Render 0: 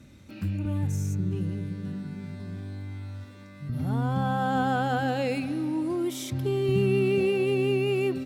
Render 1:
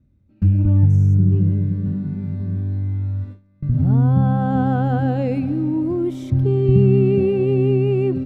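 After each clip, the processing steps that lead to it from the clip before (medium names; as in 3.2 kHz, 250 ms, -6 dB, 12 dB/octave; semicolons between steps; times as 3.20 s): gate with hold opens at -34 dBFS; tilt EQ -4.5 dB/octave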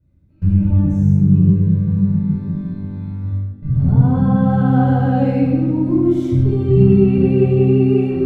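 simulated room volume 790 m³, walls mixed, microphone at 4.9 m; trim -7.5 dB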